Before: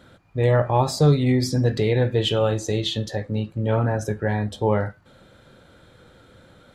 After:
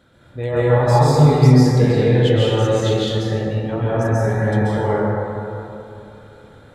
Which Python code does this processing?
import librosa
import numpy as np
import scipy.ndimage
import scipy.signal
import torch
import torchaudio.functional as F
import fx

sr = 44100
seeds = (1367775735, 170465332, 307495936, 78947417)

y = fx.rev_plate(x, sr, seeds[0], rt60_s=2.9, hf_ratio=0.35, predelay_ms=120, drr_db=-9.0)
y = F.gain(torch.from_numpy(y), -5.0).numpy()